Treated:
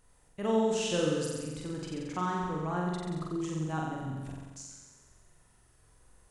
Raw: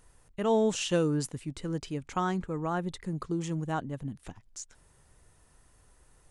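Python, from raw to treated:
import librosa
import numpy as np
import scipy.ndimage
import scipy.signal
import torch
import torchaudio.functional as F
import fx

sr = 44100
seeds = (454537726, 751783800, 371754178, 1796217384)

y = fx.reverse_delay(x, sr, ms=145, wet_db=-12)
y = fx.room_flutter(y, sr, wall_m=7.7, rt60_s=1.3)
y = y * 10.0 ** (-5.5 / 20.0)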